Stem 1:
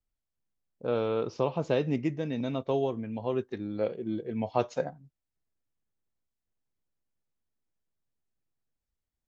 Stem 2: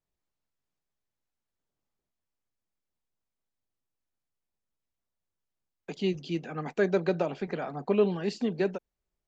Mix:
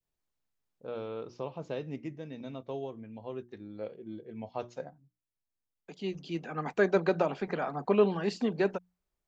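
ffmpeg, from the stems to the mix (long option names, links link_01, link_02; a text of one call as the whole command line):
ffmpeg -i stem1.wav -i stem2.wav -filter_complex "[0:a]bandreject=frequency=60:width_type=h:width=6,bandreject=frequency=120:width_type=h:width=6,bandreject=frequency=180:width_type=h:width=6,bandreject=frequency=240:width_type=h:width=6,bandreject=frequency=300:width_type=h:width=6,bandreject=frequency=360:width_type=h:width=6,volume=-9.5dB,asplit=2[link_01][link_02];[1:a]adynamicequalizer=threshold=0.00631:dfrequency=1100:dqfactor=1.1:tfrequency=1100:tqfactor=1.1:attack=5:release=100:ratio=0.375:range=3:mode=boostabove:tftype=bell,bandreject=frequency=60:width_type=h:width=6,bandreject=frequency=120:width_type=h:width=6,bandreject=frequency=180:width_type=h:width=6,volume=-1dB[link_03];[link_02]apad=whole_len=409064[link_04];[link_03][link_04]sidechaincompress=threshold=-52dB:ratio=6:attack=6:release=1260[link_05];[link_01][link_05]amix=inputs=2:normalize=0" out.wav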